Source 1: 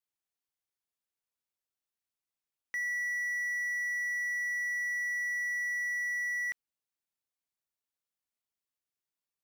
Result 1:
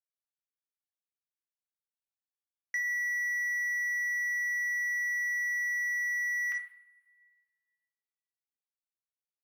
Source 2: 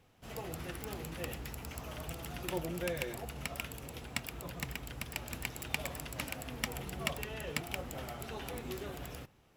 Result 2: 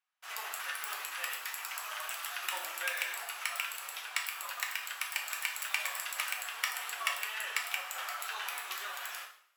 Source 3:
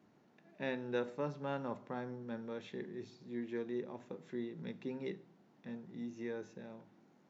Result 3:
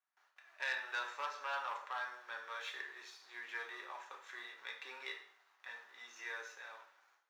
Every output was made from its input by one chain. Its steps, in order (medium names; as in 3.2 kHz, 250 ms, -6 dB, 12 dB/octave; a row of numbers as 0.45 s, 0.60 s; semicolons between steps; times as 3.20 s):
waveshaping leveller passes 1; gate with hold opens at -56 dBFS; ladder high-pass 980 Hz, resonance 35%; two-slope reverb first 0.49 s, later 2 s, from -28 dB, DRR 1 dB; in parallel at +1 dB: compression, threshold -45 dBFS; on the sum: transformer saturation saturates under 2 kHz; trim +3.5 dB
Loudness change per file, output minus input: +2.0 LU, +4.5 LU, -1.0 LU